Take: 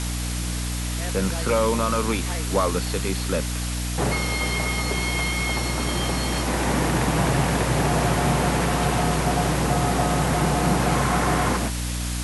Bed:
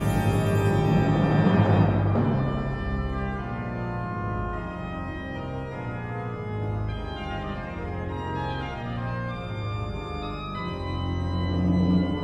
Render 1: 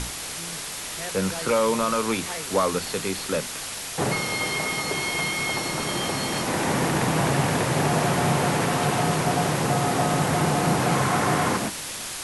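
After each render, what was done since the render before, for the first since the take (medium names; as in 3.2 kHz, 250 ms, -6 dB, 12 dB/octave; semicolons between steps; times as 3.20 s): hum notches 60/120/180/240/300 Hz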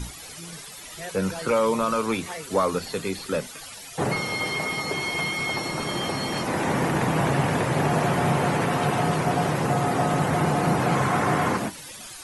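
noise reduction 14 dB, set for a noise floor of -34 dBFS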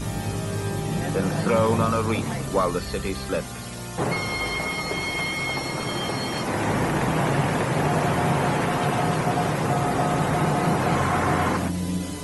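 add bed -5.5 dB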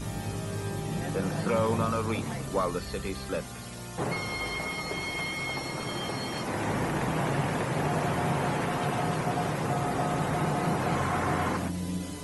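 trim -6 dB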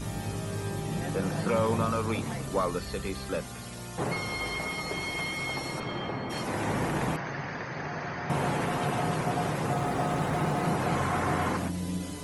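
5.79–6.29 s: low-pass 3.9 kHz -> 1.9 kHz; 7.16–8.30 s: rippled Chebyshev low-pass 6.5 kHz, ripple 9 dB; 9.74–10.65 s: hysteresis with a dead band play -47 dBFS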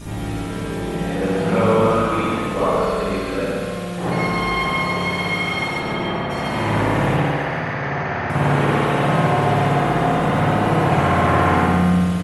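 feedback delay 141 ms, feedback 58%, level -5 dB; spring tank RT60 1.3 s, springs 56 ms, chirp 40 ms, DRR -9.5 dB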